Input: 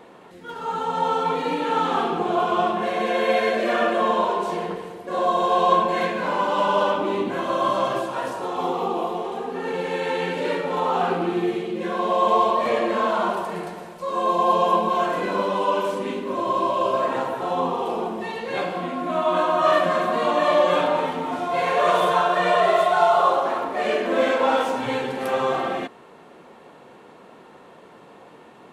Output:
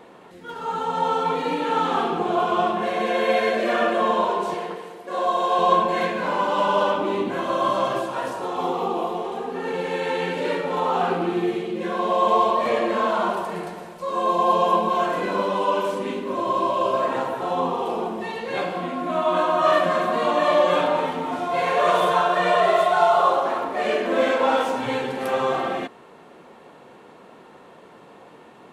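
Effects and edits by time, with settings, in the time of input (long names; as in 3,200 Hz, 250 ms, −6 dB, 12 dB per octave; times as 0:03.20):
0:04.54–0:05.59: high-pass filter 400 Hz 6 dB per octave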